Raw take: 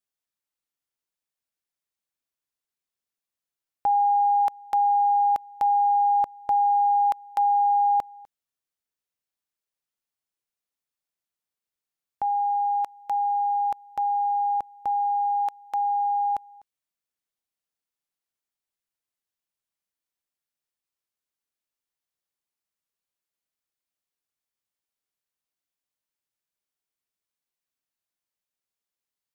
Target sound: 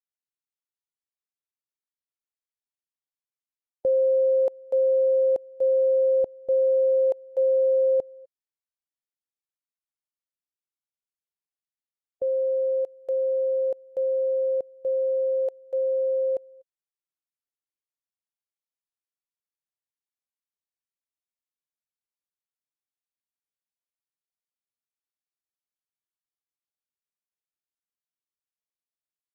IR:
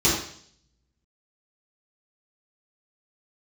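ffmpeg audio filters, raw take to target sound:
-af "afftdn=nr=14:nf=-37,asetrate=28595,aresample=44100,atempo=1.54221"

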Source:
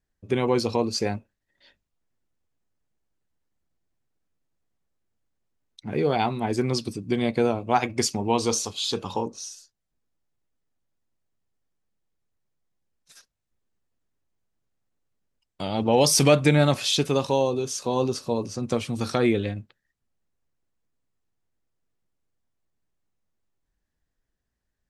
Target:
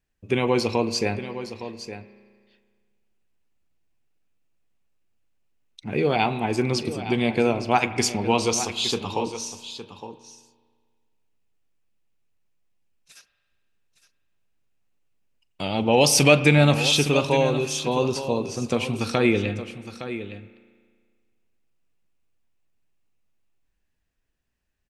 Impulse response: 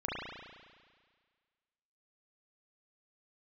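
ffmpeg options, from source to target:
-filter_complex "[0:a]equalizer=f=2600:w=3.3:g=9,aecho=1:1:863:0.251,asplit=2[s0][s1];[1:a]atrim=start_sample=2205,adelay=41[s2];[s1][s2]afir=irnorm=-1:irlink=0,volume=0.112[s3];[s0][s3]amix=inputs=2:normalize=0,volume=1.12"

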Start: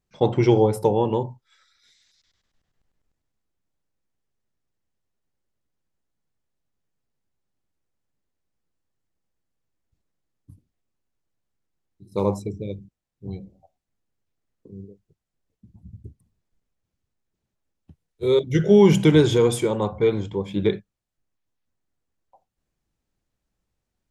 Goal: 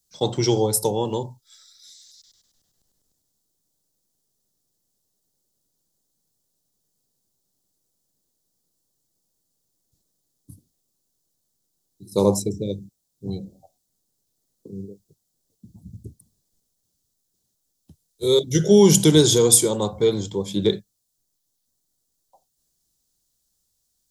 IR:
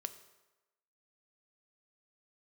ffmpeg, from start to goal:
-filter_complex "[0:a]acrossover=split=110|850[s0][s1][s2];[s1]dynaudnorm=f=200:g=21:m=3.16[s3];[s0][s3][s2]amix=inputs=3:normalize=0,aexciter=amount=10.8:drive=3.2:freq=3600,volume=0.668"

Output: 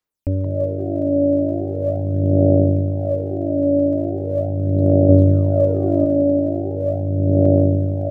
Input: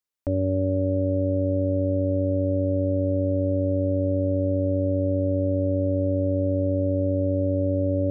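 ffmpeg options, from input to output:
-filter_complex "[0:a]asettb=1/sr,asplit=3[s0][s1][s2];[s0]atrim=end=5.094[s3];[s1]atrim=start=5.09:end=6.05,asetpts=PTS-STARTPTS,afade=t=in:d=0.004:c=qsin,afade=t=out:st=0.956:d=0.004:c=qsin,acontrast=32[s4];[s2]atrim=start=6.046[s5];[s3][s4]acrossfade=d=0.004:c1=hsin:c2=qsin[s6];[s6][s5]acrossfade=d=0.004:c1=qsin:c2=hsin,asplit=6[s7][s8][s9][s10][s11][s12];[s8]adelay=175,afreqshift=53,volume=0.376[s13];[s9]adelay=350,afreqshift=106,volume=0.162[s14];[s10]adelay=525,afreqshift=159,volume=0.0692[s15];[s11]adelay=700,afreqshift=212,volume=0.0299[s16];[s12]adelay=875,afreqshift=265,volume=0.0129[s17];[s7][s13][s14][s15][s16][s17]amix=inputs=6:normalize=0,aphaser=in_gain=1:out_gain=1:delay=3.5:decay=0.67:speed=0.4:type=sinusoidal"

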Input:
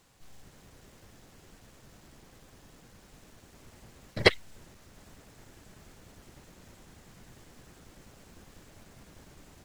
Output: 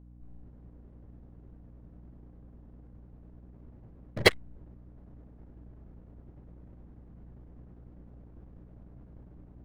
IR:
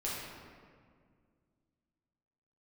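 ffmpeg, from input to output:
-af "adynamicsmooth=sensitivity=6:basefreq=520,aeval=exprs='val(0)+0.00282*(sin(2*PI*60*n/s)+sin(2*PI*2*60*n/s)/2+sin(2*PI*3*60*n/s)/3+sin(2*PI*4*60*n/s)/4+sin(2*PI*5*60*n/s)/5)':c=same"

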